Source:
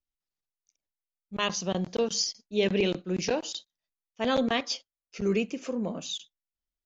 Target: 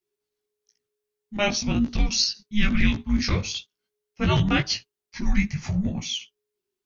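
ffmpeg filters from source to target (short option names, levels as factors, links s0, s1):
-af "flanger=delay=15.5:depth=3.2:speed=1,afreqshift=-420,volume=2.82"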